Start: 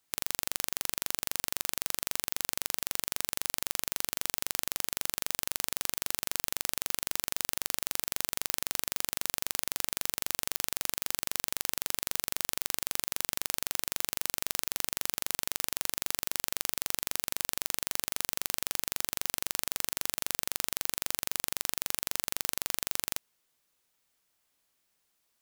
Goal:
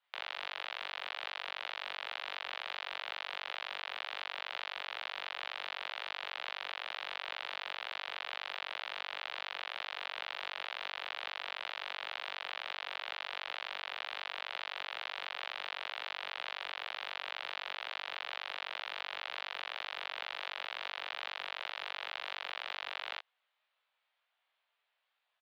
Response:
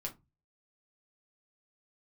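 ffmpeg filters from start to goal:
-filter_complex "[0:a]highpass=f=520:t=q:w=0.5412,highpass=f=520:t=q:w=1.307,lowpass=f=3600:t=q:w=0.5176,lowpass=f=3600:t=q:w=0.7071,lowpass=f=3600:t=q:w=1.932,afreqshift=73,asplit=2[s0][s1];[s1]adelay=16,volume=0.562[s2];[s0][s2]amix=inputs=2:normalize=0,flanger=delay=20:depth=4.7:speed=2.1,volume=1.41"

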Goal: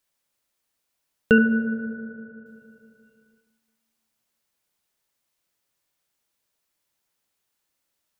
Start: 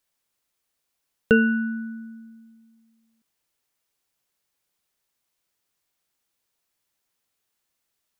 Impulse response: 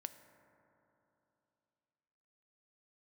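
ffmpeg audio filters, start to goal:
-filter_complex "[0:a]asettb=1/sr,asplit=3[s0][s1][s2];[s0]atrim=end=1.384[s3];[s1]atrim=start=1.38:end=2.46,asetpts=PTS-STARTPTS,afade=t=in:d=0.004:c=qsin,afade=t=out:st=1.076:d=0.004:c=qsin,lowpass=f=1400:w=0.5412,lowpass=f=1400:w=1.3066[s4];[s2]atrim=start=2.456[s5];[s3][s4]acrossfade=d=0.004:c1=hsin:c2=qsin[s6];[s6][s5]acrossfade=d=0.004:c1=qsin:c2=hsin[s7];[1:a]atrim=start_sample=2205[s8];[s7][s8]afir=irnorm=-1:irlink=0,volume=1.68"

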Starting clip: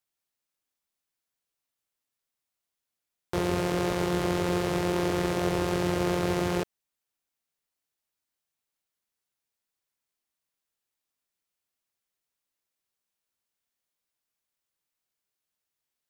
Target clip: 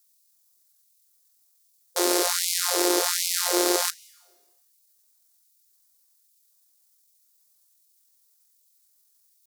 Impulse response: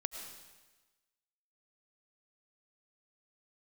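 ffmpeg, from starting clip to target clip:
-filter_complex "[0:a]atempo=1.7,aexciter=amount=2.2:drive=10:freq=4000,asplit=2[s0][s1];[1:a]atrim=start_sample=2205,adelay=36[s2];[s1][s2]afir=irnorm=-1:irlink=0,volume=0.119[s3];[s0][s3]amix=inputs=2:normalize=0,afftfilt=real='re*gte(b*sr/1024,220*pow(2100/220,0.5+0.5*sin(2*PI*1.3*pts/sr)))':imag='im*gte(b*sr/1024,220*pow(2100/220,0.5+0.5*sin(2*PI*1.3*pts/sr)))':win_size=1024:overlap=0.75,volume=1.78"

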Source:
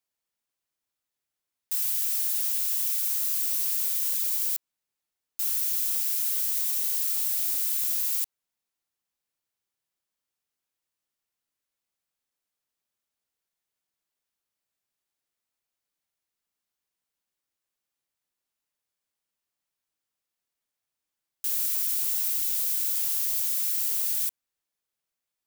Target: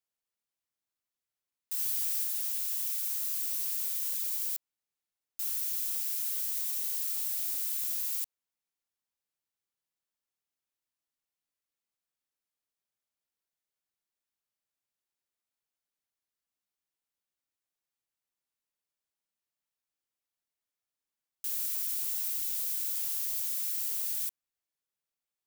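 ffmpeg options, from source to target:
-filter_complex "[0:a]asettb=1/sr,asplit=3[s0][s1][s2];[s0]atrim=end=1.774[s3];[s1]atrim=start=1.77:end=2.24,asetpts=PTS-STARTPTS,afade=t=in:d=0.004:c=qsin,afade=t=out:st=0.466:d=0.004:c=qsin,asplit=2[s4][s5];[s5]adelay=13,volume=0.708[s6];[s4][s6]amix=inputs=2:normalize=0,atrim=end_sample=20727[s7];[s2]atrim=start=2.236[s8];[s3][s7]acrossfade=d=0.004:c1=hsin:c2=qsin[s9];[s9][s8]acrossfade=d=0.004:c1=qsin:c2=hsin,volume=0.501"

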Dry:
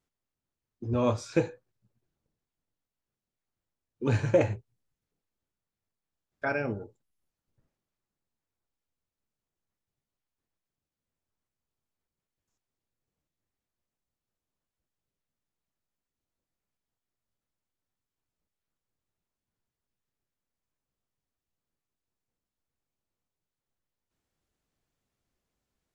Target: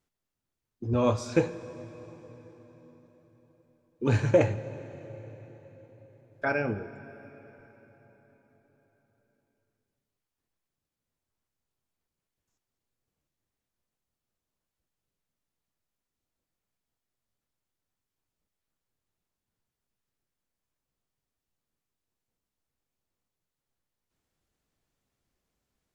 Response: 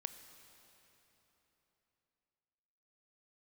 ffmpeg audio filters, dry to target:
-filter_complex "[0:a]asplit=2[s0][s1];[1:a]atrim=start_sample=2205,asetrate=34839,aresample=44100[s2];[s1][s2]afir=irnorm=-1:irlink=0,volume=1.68[s3];[s0][s3]amix=inputs=2:normalize=0,volume=0.531"

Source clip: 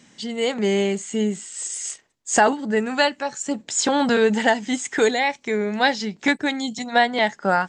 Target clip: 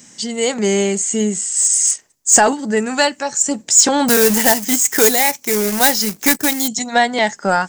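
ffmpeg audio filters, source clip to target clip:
-filter_complex "[0:a]asettb=1/sr,asplit=3[s0][s1][s2];[s0]atrim=end=4.084[s3];[s1]atrim=start=4.08:end=6.68,asetpts=PTS-STARTPTS,afade=t=in:d=0.004:c=qsin,afade=t=out:st=2.596:d=0.004:c=qsin,acrusher=bits=2:mode=log:mix=0:aa=0.000001[s4];[s2]atrim=start=6.676[s5];[s3][s4]acrossfade=d=0.004:c1=hsin:c2=qsin[s6];[s6][s5]acrossfade=d=0.004:c1=qsin:c2=hsin,aexciter=amount=5.3:drive=1.8:freq=5100,acontrast=32,volume=0.891"

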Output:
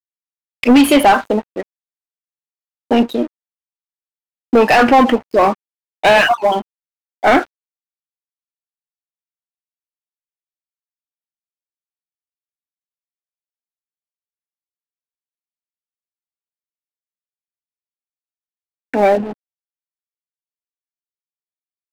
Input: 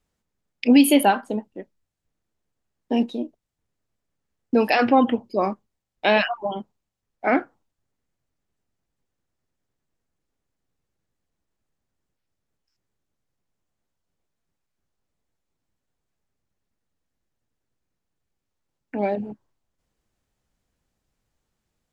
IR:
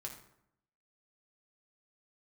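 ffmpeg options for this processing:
-filter_complex "[0:a]asplit=2[s0][s1];[s1]highpass=f=720:p=1,volume=14.1,asoftclip=type=tanh:threshold=0.668[s2];[s0][s2]amix=inputs=2:normalize=0,lowpass=f=2100:p=1,volume=0.501,aeval=exprs='sgn(val(0))*max(abs(val(0))-0.0178,0)':c=same,volume=1.41"

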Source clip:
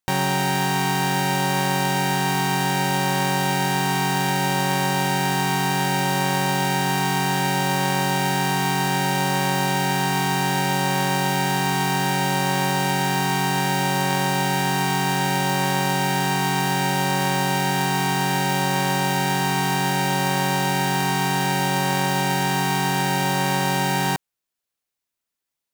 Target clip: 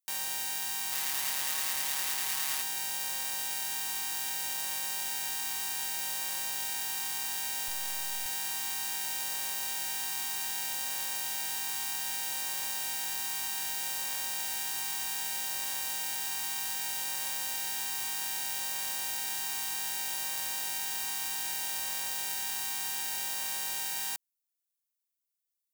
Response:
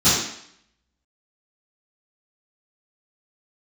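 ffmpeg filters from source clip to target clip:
-filter_complex "[0:a]asettb=1/sr,asplit=3[s0][s1][s2];[s0]atrim=end=0.924[s3];[s1]atrim=start=0.92:end=2.62,asetpts=PTS-STARTPTS,afade=t=in:d=0.004:c=qsin,afade=t=out:st=1.696:d=0.004:c=qsin,aeval=exprs='0.282*(cos(1*acos(clip(val(0)/0.282,-1,1)))-cos(1*PI/2))+0.0794*(cos(6*acos(clip(val(0)/0.282,-1,1)))-cos(6*PI/2))':c=same[s4];[s2]atrim=start=2.616[s5];[s3][s4]acrossfade=d=0.004:c1=hsin:c2=qsin[s6];[s6][s5]acrossfade=d=0.004:c1=qsin:c2=hsin,aderivative,asettb=1/sr,asplit=3[s7][s8][s9];[s7]atrim=end=7.684[s10];[s8]atrim=start=7.68:end=8.26,asetpts=PTS-STARTPTS,afade=t=in:d=0.004:c=qsin,afade=t=out:st=0.576:d=0.004:c=qsin,aeval=exprs='abs(val(0))':c=same[s11];[s9]atrim=start=8.256[s12];[s10][s11]acrossfade=d=0.004:c1=hsin:c2=qsin[s13];[s13][s12]acrossfade=d=0.004:c1=qsin:c2=hsin,volume=0.596"

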